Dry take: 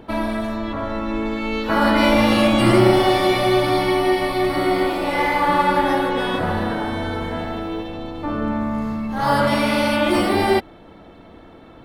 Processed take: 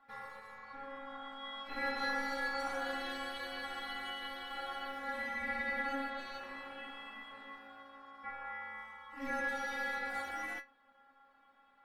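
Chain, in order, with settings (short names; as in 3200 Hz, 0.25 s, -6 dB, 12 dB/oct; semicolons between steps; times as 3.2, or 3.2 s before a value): ring modulator 1100 Hz; metallic resonator 270 Hz, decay 0.23 s, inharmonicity 0.002; gain -8 dB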